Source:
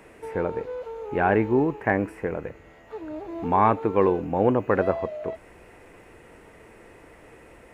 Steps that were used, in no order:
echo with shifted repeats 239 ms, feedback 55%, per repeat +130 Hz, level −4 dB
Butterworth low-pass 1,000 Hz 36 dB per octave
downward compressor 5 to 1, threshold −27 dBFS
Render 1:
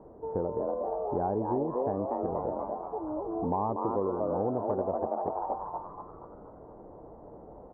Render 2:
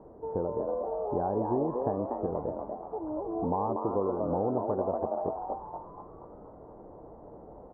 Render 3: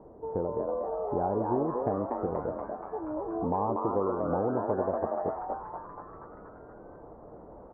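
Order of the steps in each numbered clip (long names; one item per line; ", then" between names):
echo with shifted repeats, then Butterworth low-pass, then downward compressor
downward compressor, then echo with shifted repeats, then Butterworth low-pass
Butterworth low-pass, then downward compressor, then echo with shifted repeats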